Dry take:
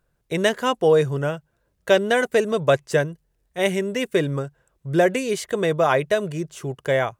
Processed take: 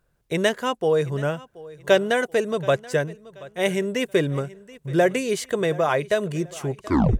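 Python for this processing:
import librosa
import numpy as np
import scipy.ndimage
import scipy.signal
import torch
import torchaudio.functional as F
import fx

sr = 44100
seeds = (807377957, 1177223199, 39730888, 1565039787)

y = fx.tape_stop_end(x, sr, length_s=0.43)
y = fx.rider(y, sr, range_db=4, speed_s=0.5)
y = fx.echo_feedback(y, sr, ms=729, feedback_pct=35, wet_db=-20)
y = y * librosa.db_to_amplitude(-1.5)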